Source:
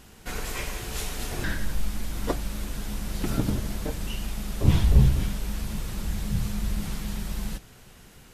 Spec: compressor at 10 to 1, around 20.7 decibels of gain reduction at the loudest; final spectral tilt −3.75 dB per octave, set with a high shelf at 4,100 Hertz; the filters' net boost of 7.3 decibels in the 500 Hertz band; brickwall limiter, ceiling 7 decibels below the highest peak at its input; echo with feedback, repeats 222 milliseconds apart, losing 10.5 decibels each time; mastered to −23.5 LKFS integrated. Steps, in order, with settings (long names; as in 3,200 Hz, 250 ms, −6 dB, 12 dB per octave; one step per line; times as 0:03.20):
parametric band 500 Hz +9 dB
high-shelf EQ 4,100 Hz +7.5 dB
downward compressor 10 to 1, threshold −33 dBFS
brickwall limiter −29.5 dBFS
repeating echo 222 ms, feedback 30%, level −10.5 dB
level +17 dB